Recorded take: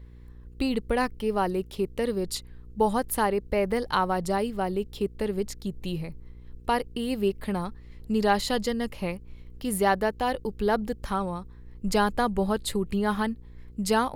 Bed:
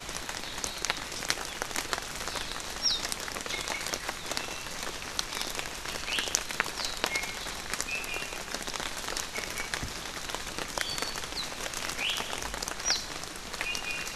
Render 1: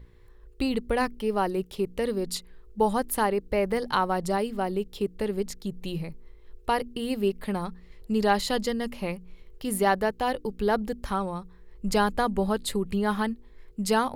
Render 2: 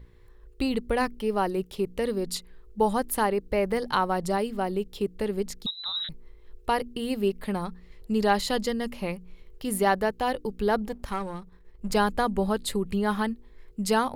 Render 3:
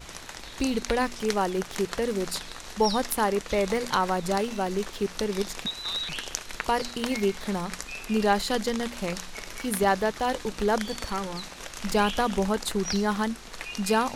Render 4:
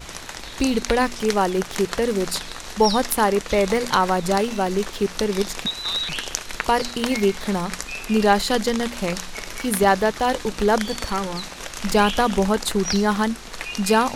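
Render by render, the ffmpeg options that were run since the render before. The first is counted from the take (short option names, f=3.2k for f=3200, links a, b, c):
-af "bandreject=f=60:t=h:w=4,bandreject=f=120:t=h:w=4,bandreject=f=180:t=h:w=4,bandreject=f=240:t=h:w=4,bandreject=f=300:t=h:w=4"
-filter_complex "[0:a]asettb=1/sr,asplit=3[a][b][c];[a]atrim=end=5.664[d];[b]atrim=start=5.66:end=6.09,asetpts=PTS-STARTPTS,afade=t=in:d=0.004:c=qsin,afade=t=out:st=0.426:d=0.004:c=qsin,lowpass=f=3.4k:t=q:w=0.5098,lowpass=f=3.4k:t=q:w=0.6013,lowpass=f=3.4k:t=q:w=0.9,lowpass=f=3.4k:t=q:w=2.563,afreqshift=-4000[e];[c]atrim=start=6.086[f];[d][e]acrossfade=d=0.004:c1=hsin:c2=qsin[g];[g][f]acrossfade=d=0.004:c1=qsin:c2=hsin,asettb=1/sr,asplit=3[h][i][j];[h]atrim=end=10.854[k];[i]atrim=start=10.85:end=11.95,asetpts=PTS-STARTPTS,afade=t=in:d=0.004:c=qsin,afade=t=out:st=1.096:d=0.004:c=qsin,aeval=exprs='if(lt(val(0),0),0.447*val(0),val(0))':c=same[l];[j]atrim=start=11.946[m];[k][l]acrossfade=d=0.004:c1=hsin:c2=qsin[n];[n][m]acrossfade=d=0.004:c1=qsin:c2=hsin"
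-filter_complex "[1:a]volume=-4.5dB[a];[0:a][a]amix=inputs=2:normalize=0"
-af "volume=6dB,alimiter=limit=-2dB:level=0:latency=1"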